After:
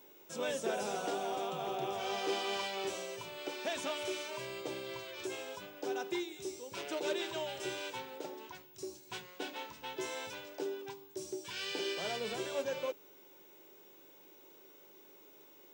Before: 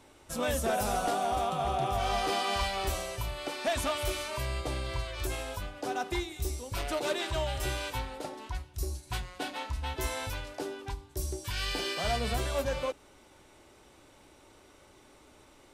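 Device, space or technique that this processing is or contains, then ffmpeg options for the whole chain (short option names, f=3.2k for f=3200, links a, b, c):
old television with a line whistle: -af "highpass=f=180:w=0.5412,highpass=f=180:w=1.3066,equalizer=f=240:t=q:w=4:g=-8,equalizer=f=400:t=q:w=4:g=5,equalizer=f=710:t=q:w=4:g=-7,equalizer=f=1.2k:t=q:w=4:g=-7,equalizer=f=1.9k:t=q:w=4:g=-4,equalizer=f=4.4k:t=q:w=4:g=-5,lowpass=f=7.6k:w=0.5412,lowpass=f=7.6k:w=1.3066,aeval=exprs='val(0)+0.00178*sin(2*PI*15625*n/s)':c=same,volume=-3dB"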